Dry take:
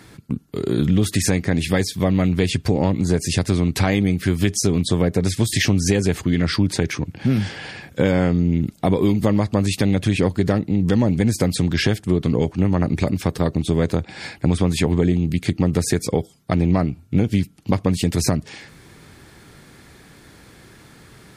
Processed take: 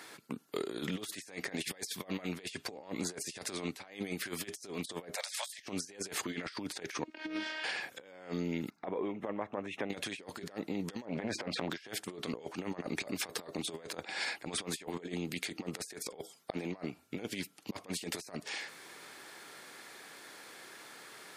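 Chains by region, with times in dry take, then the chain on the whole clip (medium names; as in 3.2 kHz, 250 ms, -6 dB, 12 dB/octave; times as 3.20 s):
5.15–5.59 s: steep high-pass 540 Hz 96 dB/octave + three bands compressed up and down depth 70%
7.04–7.64 s: robot voice 313 Hz + distance through air 120 m
8.70–9.90 s: touch-sensitive phaser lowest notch 520 Hz, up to 4.6 kHz, full sweep at -19 dBFS + compression 2:1, threshold -25 dBFS + distance through air 270 m
11.05–11.70 s: low-pass 2.2 kHz + transient shaper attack -11 dB, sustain +8 dB
whole clip: high-pass 530 Hz 12 dB/octave; compressor with a negative ratio -33 dBFS, ratio -0.5; trim -6 dB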